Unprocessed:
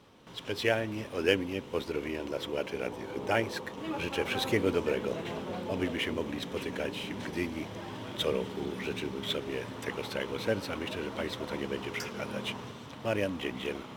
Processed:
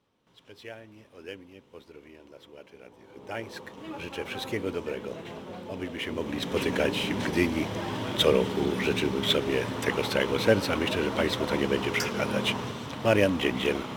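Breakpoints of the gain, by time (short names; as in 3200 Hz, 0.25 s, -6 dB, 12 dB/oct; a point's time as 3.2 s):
2.9 s -15 dB
3.6 s -3.5 dB
5.9 s -3.5 dB
6.61 s +8.5 dB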